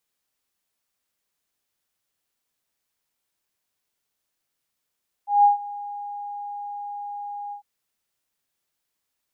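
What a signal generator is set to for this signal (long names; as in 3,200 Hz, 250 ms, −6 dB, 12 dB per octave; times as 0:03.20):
note with an ADSR envelope sine 818 Hz, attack 171 ms, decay 132 ms, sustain −20 dB, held 2.25 s, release 101 ms −10.5 dBFS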